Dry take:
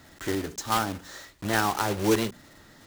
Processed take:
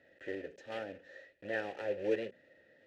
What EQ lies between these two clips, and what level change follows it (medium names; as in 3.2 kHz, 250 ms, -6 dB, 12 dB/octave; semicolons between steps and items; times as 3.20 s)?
vowel filter e; low-pass 3.3 kHz 6 dB/octave; bass shelf 160 Hz +9 dB; +1.0 dB